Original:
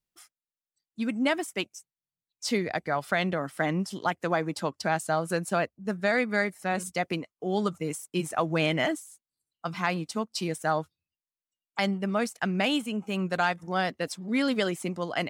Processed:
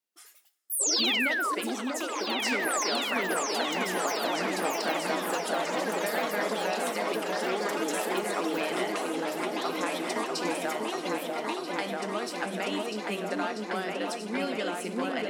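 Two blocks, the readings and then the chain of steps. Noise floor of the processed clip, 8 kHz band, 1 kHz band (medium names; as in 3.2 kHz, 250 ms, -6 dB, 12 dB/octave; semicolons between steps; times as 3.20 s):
-38 dBFS, +7.5 dB, +0.5 dB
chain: high-pass 250 Hz 24 dB/octave; compression, threshold -31 dBFS, peak gain reduction 10.5 dB; two-slope reverb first 0.87 s, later 2.3 s, DRR 9.5 dB; painted sound fall, 0.79–1.55 s, 1–8.4 kHz -29 dBFS; ever faster or slower copies 127 ms, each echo +5 st, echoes 3; delay with an opening low-pass 642 ms, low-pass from 750 Hz, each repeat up 2 oct, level 0 dB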